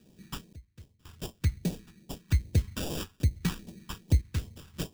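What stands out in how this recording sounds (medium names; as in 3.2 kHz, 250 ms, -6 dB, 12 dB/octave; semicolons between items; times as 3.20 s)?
aliases and images of a low sample rate 2.1 kHz, jitter 0%; random-step tremolo 1.9 Hz, depth 95%; phasing stages 2, 2.5 Hz, lowest notch 540–1300 Hz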